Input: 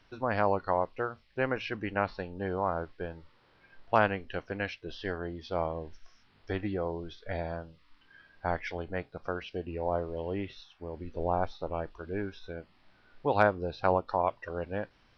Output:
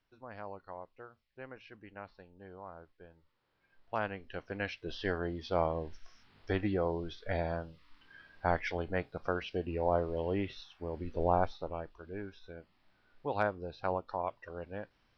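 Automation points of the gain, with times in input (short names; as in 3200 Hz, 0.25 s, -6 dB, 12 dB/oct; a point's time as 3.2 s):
3.15 s -17.5 dB
3.97 s -10.5 dB
4.94 s +1 dB
11.37 s +1 dB
11.89 s -7.5 dB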